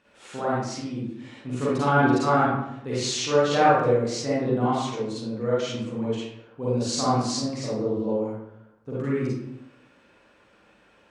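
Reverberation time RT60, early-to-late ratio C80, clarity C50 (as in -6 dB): 0.80 s, 1.5 dB, -4.0 dB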